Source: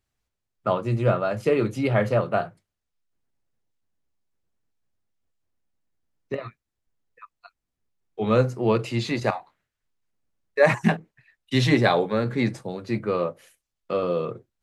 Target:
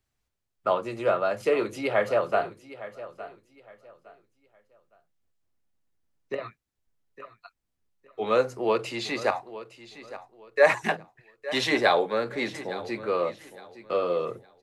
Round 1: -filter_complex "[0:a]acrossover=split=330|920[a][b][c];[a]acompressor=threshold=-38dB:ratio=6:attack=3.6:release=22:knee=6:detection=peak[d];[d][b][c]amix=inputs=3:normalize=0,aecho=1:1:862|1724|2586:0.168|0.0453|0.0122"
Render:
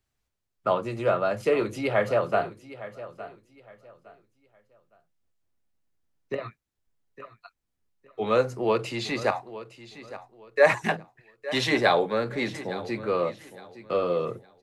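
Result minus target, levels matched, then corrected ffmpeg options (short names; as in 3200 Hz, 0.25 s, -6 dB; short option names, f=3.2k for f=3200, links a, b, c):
compressor: peak gain reduction -8.5 dB
-filter_complex "[0:a]acrossover=split=330|920[a][b][c];[a]acompressor=threshold=-48dB:ratio=6:attack=3.6:release=22:knee=6:detection=peak[d];[d][b][c]amix=inputs=3:normalize=0,aecho=1:1:862|1724|2586:0.168|0.0453|0.0122"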